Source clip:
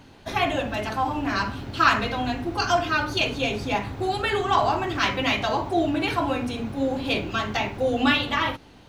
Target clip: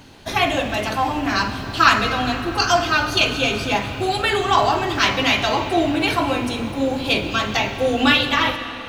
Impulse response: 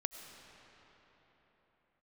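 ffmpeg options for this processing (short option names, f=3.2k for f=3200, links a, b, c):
-filter_complex "[0:a]asplit=2[a][b];[1:a]atrim=start_sample=2205,highshelf=f=2.4k:g=10.5[c];[b][c]afir=irnorm=-1:irlink=0,volume=0.5dB[d];[a][d]amix=inputs=2:normalize=0,volume=-2dB"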